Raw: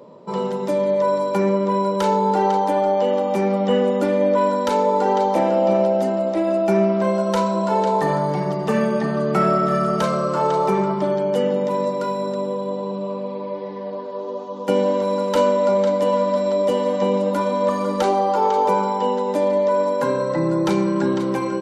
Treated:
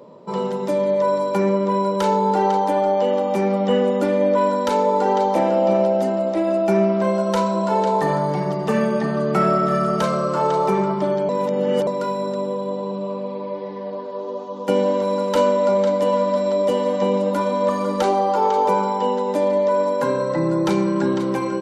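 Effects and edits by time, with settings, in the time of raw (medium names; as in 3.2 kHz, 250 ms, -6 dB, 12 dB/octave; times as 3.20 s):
11.29–11.87 s: reverse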